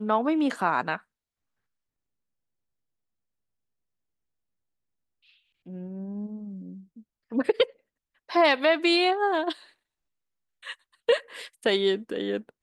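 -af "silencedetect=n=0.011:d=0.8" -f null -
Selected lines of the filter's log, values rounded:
silence_start: 0.97
silence_end: 5.66 | silence_duration: 4.70
silence_start: 9.55
silence_end: 10.64 | silence_duration: 1.09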